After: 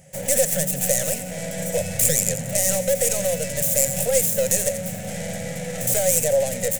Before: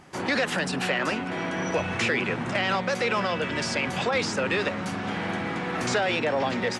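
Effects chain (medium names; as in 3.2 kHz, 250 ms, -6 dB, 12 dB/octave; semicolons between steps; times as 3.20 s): tracing distortion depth 0.4 ms; FFT filter 110 Hz 0 dB, 160 Hz +4 dB, 350 Hz -24 dB, 540 Hz +8 dB, 1.1 kHz -26 dB, 1.9 kHz -5 dB, 4.6 kHz -7 dB, 7.3 kHz +11 dB, 13 kHz +9 dB; on a send: feedback echo behind a high-pass 86 ms, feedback 41%, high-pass 3.9 kHz, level -9 dB; on the sum: trim +2.5 dB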